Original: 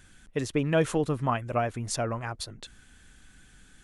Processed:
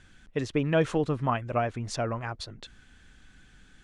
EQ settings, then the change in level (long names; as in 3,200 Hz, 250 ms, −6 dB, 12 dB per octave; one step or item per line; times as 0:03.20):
low-pass filter 5,400 Hz 12 dB per octave
0.0 dB